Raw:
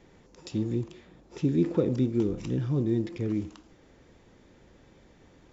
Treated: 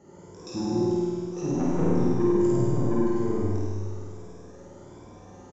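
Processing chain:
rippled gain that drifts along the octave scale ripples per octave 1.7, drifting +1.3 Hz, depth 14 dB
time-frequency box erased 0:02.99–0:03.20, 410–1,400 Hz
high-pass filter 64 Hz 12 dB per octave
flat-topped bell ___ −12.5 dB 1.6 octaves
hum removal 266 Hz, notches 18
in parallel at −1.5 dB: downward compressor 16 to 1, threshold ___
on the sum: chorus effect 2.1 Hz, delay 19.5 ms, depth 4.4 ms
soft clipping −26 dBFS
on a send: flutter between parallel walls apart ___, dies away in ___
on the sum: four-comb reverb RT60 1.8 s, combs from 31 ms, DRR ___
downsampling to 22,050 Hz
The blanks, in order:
2,800 Hz, −38 dBFS, 8.8 metres, 1.5 s, −1.5 dB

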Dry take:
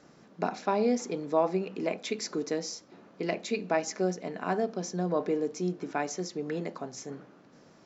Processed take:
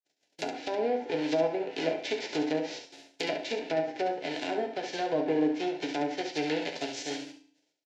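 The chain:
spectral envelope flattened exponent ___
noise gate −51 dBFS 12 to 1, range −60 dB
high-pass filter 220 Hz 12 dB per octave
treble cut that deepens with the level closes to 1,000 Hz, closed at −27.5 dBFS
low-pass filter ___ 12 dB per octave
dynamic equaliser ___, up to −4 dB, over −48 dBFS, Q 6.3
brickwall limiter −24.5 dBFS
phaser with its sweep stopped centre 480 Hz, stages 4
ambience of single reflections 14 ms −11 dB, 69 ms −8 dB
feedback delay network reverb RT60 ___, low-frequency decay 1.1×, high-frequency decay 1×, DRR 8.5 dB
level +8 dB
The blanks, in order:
0.3, 5,800 Hz, 340 Hz, 0.57 s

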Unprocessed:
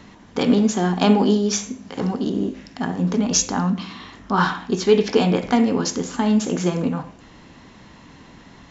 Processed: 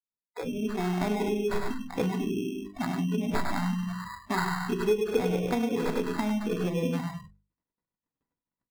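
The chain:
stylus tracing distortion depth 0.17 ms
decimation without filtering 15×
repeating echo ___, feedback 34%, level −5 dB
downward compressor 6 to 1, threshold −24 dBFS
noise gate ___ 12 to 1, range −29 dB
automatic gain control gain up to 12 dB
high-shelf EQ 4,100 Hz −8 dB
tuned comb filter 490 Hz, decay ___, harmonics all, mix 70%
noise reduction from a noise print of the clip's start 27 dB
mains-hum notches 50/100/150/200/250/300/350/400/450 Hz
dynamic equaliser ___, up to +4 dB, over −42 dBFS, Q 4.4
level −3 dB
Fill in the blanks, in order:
100 ms, −39 dBFS, 0.15 s, 430 Hz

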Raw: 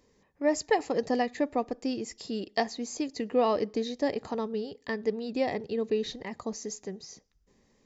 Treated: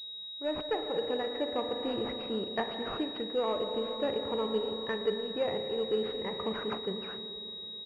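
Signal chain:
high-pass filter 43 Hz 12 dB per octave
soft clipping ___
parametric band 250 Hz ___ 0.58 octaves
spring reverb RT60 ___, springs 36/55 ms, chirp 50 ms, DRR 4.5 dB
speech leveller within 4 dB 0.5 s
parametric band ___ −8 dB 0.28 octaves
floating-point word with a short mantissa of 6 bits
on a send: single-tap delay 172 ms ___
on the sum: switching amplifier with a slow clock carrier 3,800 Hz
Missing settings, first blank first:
−16.5 dBFS, −9.5 dB, 3.1 s, 720 Hz, −24 dB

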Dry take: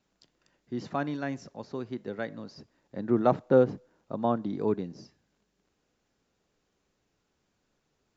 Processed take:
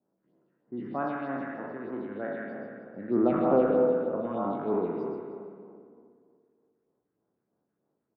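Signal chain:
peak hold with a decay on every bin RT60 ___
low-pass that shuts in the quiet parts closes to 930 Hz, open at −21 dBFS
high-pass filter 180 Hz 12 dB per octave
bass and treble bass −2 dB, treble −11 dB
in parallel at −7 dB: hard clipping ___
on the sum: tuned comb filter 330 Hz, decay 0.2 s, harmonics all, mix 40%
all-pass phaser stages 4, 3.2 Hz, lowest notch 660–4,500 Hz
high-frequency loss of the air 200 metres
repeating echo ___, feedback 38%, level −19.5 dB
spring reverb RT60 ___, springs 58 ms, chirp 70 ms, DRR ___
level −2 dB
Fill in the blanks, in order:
2.37 s, −16 dBFS, 170 ms, 1.6 s, 4.5 dB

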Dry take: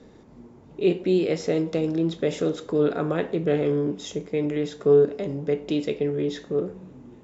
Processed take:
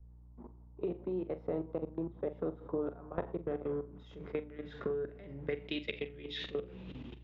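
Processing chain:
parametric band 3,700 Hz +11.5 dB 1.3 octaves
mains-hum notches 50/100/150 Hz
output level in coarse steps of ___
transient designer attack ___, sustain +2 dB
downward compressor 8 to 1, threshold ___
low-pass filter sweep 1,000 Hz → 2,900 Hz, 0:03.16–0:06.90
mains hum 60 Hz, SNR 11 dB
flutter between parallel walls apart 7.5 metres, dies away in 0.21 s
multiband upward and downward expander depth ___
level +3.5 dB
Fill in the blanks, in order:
23 dB, −2 dB, −39 dBFS, 70%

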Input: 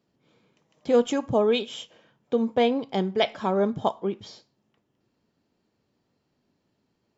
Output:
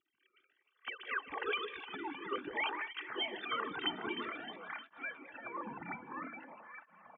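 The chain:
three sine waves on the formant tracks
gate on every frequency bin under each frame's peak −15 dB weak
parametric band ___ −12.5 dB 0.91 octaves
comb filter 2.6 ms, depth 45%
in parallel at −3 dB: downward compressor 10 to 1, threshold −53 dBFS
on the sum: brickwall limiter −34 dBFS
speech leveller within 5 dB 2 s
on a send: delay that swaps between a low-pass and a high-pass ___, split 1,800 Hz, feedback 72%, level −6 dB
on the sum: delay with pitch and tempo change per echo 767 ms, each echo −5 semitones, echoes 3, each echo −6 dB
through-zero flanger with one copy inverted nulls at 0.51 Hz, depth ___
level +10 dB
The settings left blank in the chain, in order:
700 Hz, 154 ms, 1.9 ms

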